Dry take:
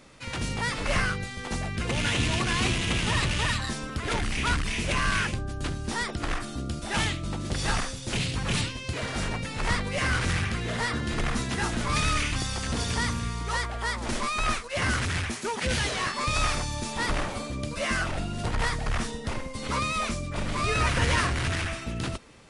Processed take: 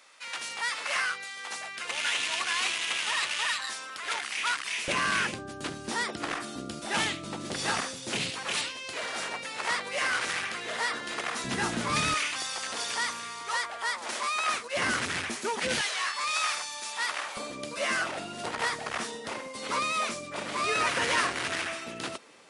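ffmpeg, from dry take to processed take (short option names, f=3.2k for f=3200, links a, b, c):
-af "asetnsamples=n=441:p=0,asendcmd='4.88 highpass f 250;8.3 highpass f 530;11.44 highpass f 170;12.14 highpass f 630;14.54 highpass f 250;15.81 highpass f 1000;17.37 highpass f 350',highpass=940"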